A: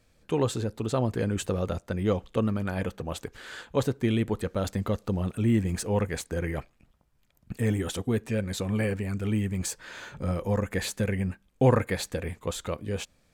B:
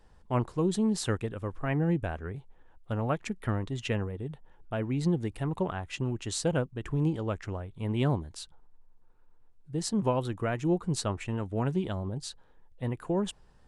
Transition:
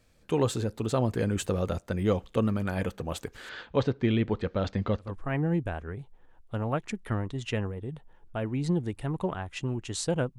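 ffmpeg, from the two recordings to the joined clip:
-filter_complex "[0:a]asettb=1/sr,asplit=3[s0][s1][s2];[s0]atrim=end=3.494[s3];[s1]atrim=start=3.49:end=5.16,asetpts=PTS-STARTPTS,afade=t=in:d=0.004:c=qsin,afade=t=out:st=1.666:d=0.004:c=qsin,lowpass=f=4700:w=0.5412,lowpass=f=4700:w=1.3066[s4];[s2]atrim=start=5.156[s5];[s3][s4]acrossfade=d=0.004:c1=hsin:c2=qsin[s6];[s6][s5]acrossfade=d=0.004:c1=qsin:c2=hsin,apad=whole_dur=10.38,atrim=end=10.38,atrim=end=5.16,asetpts=PTS-STARTPTS[s7];[1:a]atrim=start=1.33:end=6.75,asetpts=PTS-STARTPTS[s8];[s7][s8]acrossfade=d=0.2:c1=tri:c2=tri"

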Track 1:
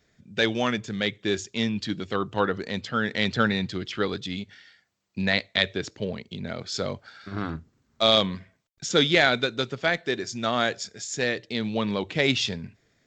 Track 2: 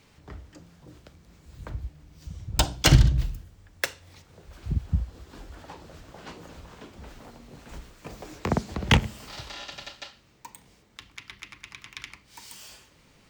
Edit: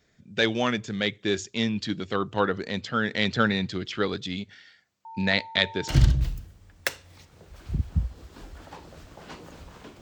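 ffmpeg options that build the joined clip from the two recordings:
-filter_complex "[0:a]asettb=1/sr,asplit=3[s0][s1][s2];[s0]atrim=end=5.054[s3];[s1]atrim=start=5.05:end=6.03,asetpts=PTS-STARTPTS,afade=t=in:d=0.004:c=qsin,afade=t=out:st=0.976:d=0.004:c=qsin,aeval=exprs='val(0)+0.0112*sin(2*PI*900*n/s)':c=same[s4];[s2]atrim=start=6.026[s5];[s3][s4]acrossfade=d=0.004:c1=hsin:c2=qsin[s6];[s6][s5]acrossfade=d=0.004:c1=qsin:c2=hsin,apad=whole_dur=10.01,atrim=end=10.01,atrim=end=6.03,asetpts=PTS-STARTPTS[s7];[1:a]atrim=start=2.84:end=6.98,asetpts=PTS-STARTPTS[s8];[s7][s8]acrossfade=d=0.16:c1=tri:c2=tri"

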